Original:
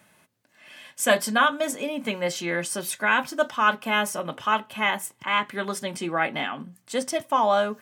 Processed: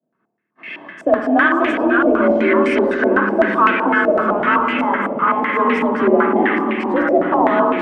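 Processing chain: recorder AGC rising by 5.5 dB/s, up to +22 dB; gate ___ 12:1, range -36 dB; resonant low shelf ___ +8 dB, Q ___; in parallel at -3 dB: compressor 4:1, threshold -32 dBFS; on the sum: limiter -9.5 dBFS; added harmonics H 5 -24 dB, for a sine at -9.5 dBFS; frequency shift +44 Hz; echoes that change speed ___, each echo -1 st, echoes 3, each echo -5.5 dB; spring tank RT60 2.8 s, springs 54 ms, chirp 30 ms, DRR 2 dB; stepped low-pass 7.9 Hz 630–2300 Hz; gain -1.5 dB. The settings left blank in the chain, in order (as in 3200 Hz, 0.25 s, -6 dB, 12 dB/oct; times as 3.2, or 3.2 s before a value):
-54 dBFS, 480 Hz, 1.5, 0.486 s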